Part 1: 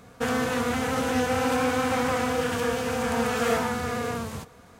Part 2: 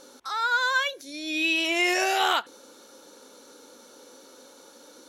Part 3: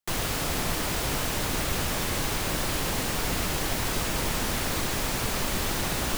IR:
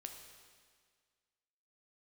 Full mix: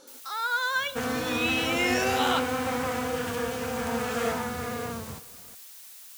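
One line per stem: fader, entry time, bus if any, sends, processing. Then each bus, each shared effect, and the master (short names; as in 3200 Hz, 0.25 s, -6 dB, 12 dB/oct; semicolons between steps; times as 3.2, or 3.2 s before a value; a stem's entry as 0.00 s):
-4.0 dB, 0.75 s, no send, dry
-6.0 dB, 0.00 s, send -4 dB, dry
-15.5 dB, 0.00 s, no send, differentiator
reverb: on, RT60 1.8 s, pre-delay 8 ms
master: dry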